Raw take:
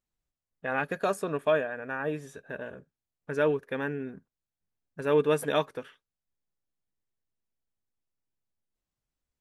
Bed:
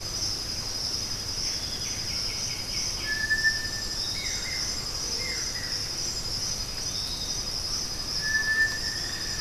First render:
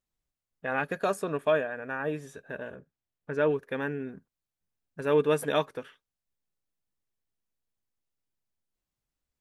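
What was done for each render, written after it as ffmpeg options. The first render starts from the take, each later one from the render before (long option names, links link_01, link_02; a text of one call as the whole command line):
ffmpeg -i in.wav -filter_complex "[0:a]asettb=1/sr,asplit=3[link_01][link_02][link_03];[link_01]atrim=end=2.764[link_04];[link_02]atrim=start=2.76:end=3.51,asetpts=PTS-STARTPTS,afade=type=in:duration=0.004:curve=qsin,afade=type=out:start_time=0.746:duration=0.004:curve=qsin,aemphasis=mode=reproduction:type=50kf[link_05];[link_03]atrim=start=3.506[link_06];[link_04][link_05]acrossfade=duration=0.004:curve1=hsin:curve2=qsin[link_07];[link_07][link_06]acrossfade=duration=0.004:curve1=qsin:curve2=hsin" out.wav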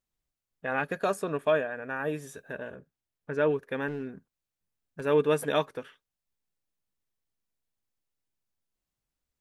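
ffmpeg -i in.wav -filter_complex "[0:a]asettb=1/sr,asplit=3[link_01][link_02][link_03];[link_01]atrim=end=1.964[link_04];[link_02]atrim=start=1.96:end=2.53,asetpts=PTS-STARTPTS,afade=type=in:duration=0.004:curve=qsin,afade=type=out:start_time=0.566:duration=0.004:curve=qsin,highshelf=frequency=7100:gain=10.5[link_05];[link_03]atrim=start=2.526[link_06];[link_04][link_05]acrossfade=duration=0.004:curve1=hsin:curve2=qsin[link_07];[link_07][link_06]acrossfade=duration=0.004:curve1=qsin:curve2=hsin,asettb=1/sr,asplit=3[link_08][link_09][link_10];[link_08]atrim=end=3.884[link_11];[link_09]atrim=start=3.88:end=5.02,asetpts=PTS-STARTPTS,afade=type=in:duration=0.004:curve=qsin,afade=type=out:start_time=1.136:duration=0.004:curve=qsin,asoftclip=type=hard:threshold=-28.5dB[link_12];[link_10]atrim=start=5.016[link_13];[link_11][link_12]acrossfade=duration=0.004:curve1=hsin:curve2=qsin[link_14];[link_14][link_13]acrossfade=duration=0.004:curve1=qsin:curve2=hsin" out.wav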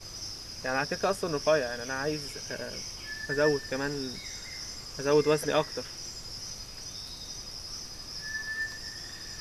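ffmpeg -i in.wav -i bed.wav -filter_complex "[1:a]volume=-10dB[link_01];[0:a][link_01]amix=inputs=2:normalize=0" out.wav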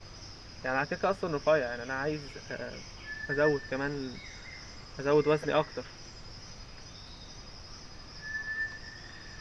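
ffmpeg -i in.wav -af "lowpass=3100,equalizer=frequency=390:width=1.5:gain=-2" out.wav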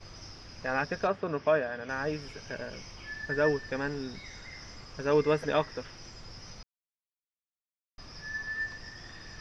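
ffmpeg -i in.wav -filter_complex "[0:a]asettb=1/sr,asplit=3[link_01][link_02][link_03];[link_01]atrim=end=1.074[link_04];[link_02]atrim=start=1.07:end=1.89,asetpts=PTS-STARTPTS,afade=type=in:duration=0.004:curve=qsin,afade=type=out:start_time=0.816:duration=0.004:curve=qsin,highpass=100,lowpass=3100[link_05];[link_03]atrim=start=1.886[link_06];[link_04][link_05]acrossfade=duration=0.004:curve1=hsin:curve2=qsin[link_07];[link_07][link_06]acrossfade=duration=0.004:curve1=qsin:curve2=hsin,asplit=3[link_08][link_09][link_10];[link_08]atrim=end=6.63,asetpts=PTS-STARTPTS,afade=type=out:start_time=6.626:duration=0.004:curve=hsin[link_11];[link_09]atrim=start=6.63:end=7.98,asetpts=PTS-STARTPTS,volume=0[link_12];[link_10]atrim=start=7.98,asetpts=PTS-STARTPTS,afade=type=in:duration=0.004:curve=hsin[link_13];[link_11][link_12][link_13]concat=n=3:v=0:a=1" out.wav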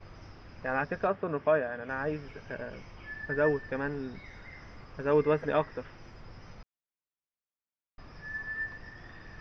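ffmpeg -i in.wav -af "lowpass=2300" out.wav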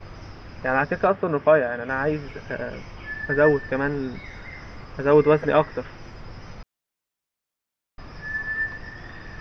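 ffmpeg -i in.wav -af "volume=9dB" out.wav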